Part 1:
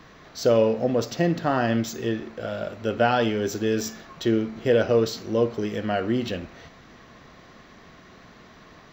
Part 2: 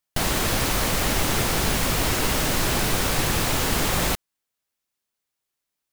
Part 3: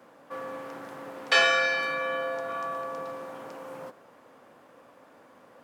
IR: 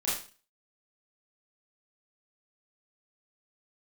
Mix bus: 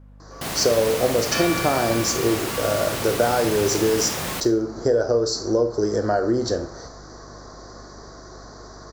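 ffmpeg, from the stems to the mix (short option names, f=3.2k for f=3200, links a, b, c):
-filter_complex "[0:a]firequalizer=gain_entry='entry(120,0);entry(190,-8);entry(330,5);entry(1500,1);entry(2700,-29);entry(4500,9);entry(7000,10);entry(13000,-15)':delay=0.05:min_phase=1,acompressor=threshold=-22dB:ratio=6,adelay=200,volume=-1.5dB,asplit=2[a][b];[b]volume=-16.5dB[c];[1:a]highpass=91,adelay=250,volume=-11.5dB,asplit=2[d][e];[e]volume=-16dB[f];[2:a]volume=-14dB,asplit=2[g][h];[h]volume=-9dB[i];[3:a]atrim=start_sample=2205[j];[c][f][i]amix=inputs=3:normalize=0[k];[k][j]afir=irnorm=-1:irlink=0[l];[a][d][g][l]amix=inputs=4:normalize=0,dynaudnorm=f=230:g=3:m=5.5dB,aeval=exprs='val(0)+0.00562*(sin(2*PI*50*n/s)+sin(2*PI*2*50*n/s)/2+sin(2*PI*3*50*n/s)/3+sin(2*PI*4*50*n/s)/4+sin(2*PI*5*50*n/s)/5)':c=same"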